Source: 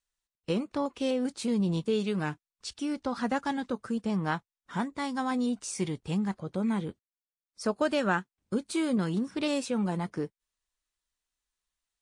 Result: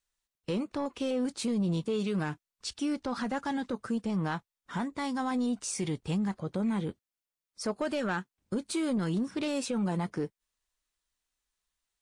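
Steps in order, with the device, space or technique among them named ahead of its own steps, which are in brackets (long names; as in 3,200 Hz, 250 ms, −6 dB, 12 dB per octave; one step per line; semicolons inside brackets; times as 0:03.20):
soft clipper into limiter (soft clipping −20.5 dBFS, distortion −20 dB; brickwall limiter −26 dBFS, peak gain reduction 5 dB)
level +2 dB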